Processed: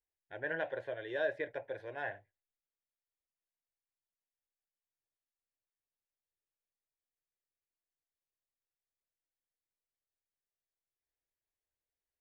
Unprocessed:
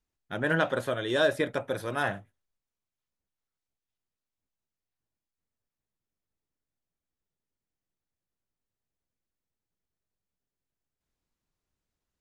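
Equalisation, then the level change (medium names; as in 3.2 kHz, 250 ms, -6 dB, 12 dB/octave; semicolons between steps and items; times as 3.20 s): resonant low-pass 1.7 kHz, resonance Q 2.8; tilt EQ +1.5 dB/octave; static phaser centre 520 Hz, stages 4; -8.5 dB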